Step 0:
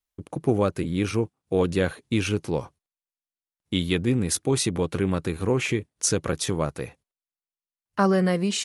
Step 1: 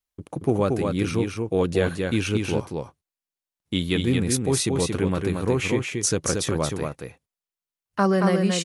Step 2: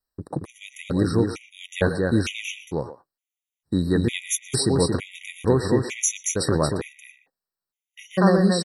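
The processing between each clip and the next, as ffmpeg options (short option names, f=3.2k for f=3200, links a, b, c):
-af "aecho=1:1:228:0.631"
-filter_complex "[0:a]asplit=2[a][b];[b]adelay=120,highpass=300,lowpass=3.4k,asoftclip=type=hard:threshold=-18dB,volume=-12dB[c];[a][c]amix=inputs=2:normalize=0,afftfilt=real='re*gt(sin(2*PI*1.1*pts/sr)*(1-2*mod(floor(b*sr/1024/1900),2)),0)':imag='im*gt(sin(2*PI*1.1*pts/sr)*(1-2*mod(floor(b*sr/1024/1900),2)),0)':win_size=1024:overlap=0.75,volume=3.5dB"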